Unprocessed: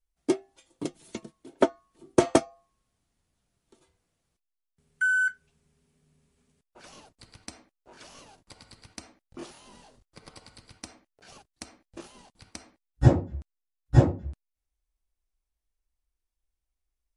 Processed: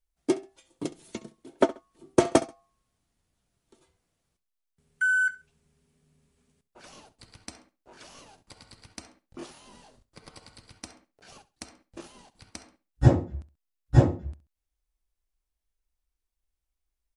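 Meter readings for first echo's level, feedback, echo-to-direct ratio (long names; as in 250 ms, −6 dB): −18.0 dB, 25%, −17.5 dB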